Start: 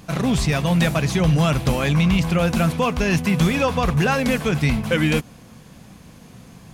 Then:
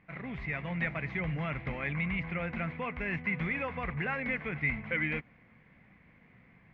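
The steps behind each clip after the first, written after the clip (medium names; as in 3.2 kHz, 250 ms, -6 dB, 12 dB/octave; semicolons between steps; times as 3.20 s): four-pole ladder low-pass 2.2 kHz, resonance 80%; level rider gain up to 4 dB; trim -9 dB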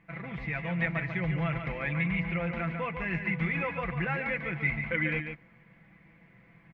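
comb 6 ms, depth 58%; on a send: delay 144 ms -7 dB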